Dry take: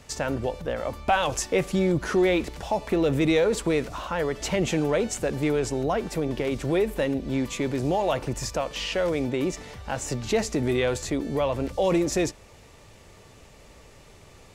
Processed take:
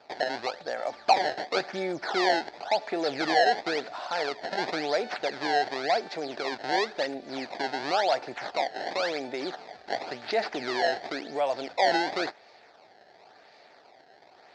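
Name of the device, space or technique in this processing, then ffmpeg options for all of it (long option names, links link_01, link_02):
circuit-bent sampling toy: -af "acrusher=samples=21:mix=1:aa=0.000001:lfo=1:lforange=33.6:lforate=0.94,highpass=510,equalizer=frequency=510:width_type=q:width=4:gain=-4,equalizer=frequency=730:width_type=q:width=4:gain=8,equalizer=frequency=1100:width_type=q:width=4:gain=-8,equalizer=frequency=1700:width_type=q:width=4:gain=3,equalizer=frequency=2900:width_type=q:width=4:gain=-7,equalizer=frequency=4500:width_type=q:width=4:gain=7,lowpass=frequency=4900:width=0.5412,lowpass=frequency=4900:width=1.3066"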